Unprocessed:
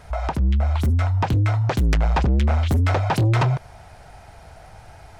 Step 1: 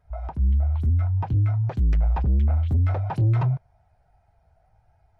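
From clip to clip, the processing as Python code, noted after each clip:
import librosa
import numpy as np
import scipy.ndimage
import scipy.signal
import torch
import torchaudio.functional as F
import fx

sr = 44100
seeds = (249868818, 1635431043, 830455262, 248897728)

y = fx.spectral_expand(x, sr, expansion=1.5)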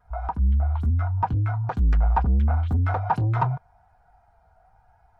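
y = fx.band_shelf(x, sr, hz=1100.0, db=9.5, octaves=1.3)
y = y + 0.34 * np.pad(y, (int(4.2 * sr / 1000.0), 0))[:len(y)]
y = fx.vibrato(y, sr, rate_hz=0.84, depth_cents=19.0)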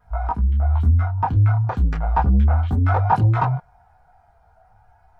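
y = fx.detune_double(x, sr, cents=11)
y = F.gain(torch.from_numpy(y), 8.0).numpy()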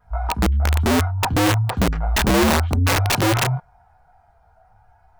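y = (np.mod(10.0 ** (13.0 / 20.0) * x + 1.0, 2.0) - 1.0) / 10.0 ** (13.0 / 20.0)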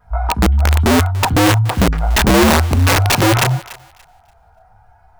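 y = fx.echo_thinned(x, sr, ms=289, feedback_pct=23, hz=750.0, wet_db=-17)
y = F.gain(torch.from_numpy(y), 5.5).numpy()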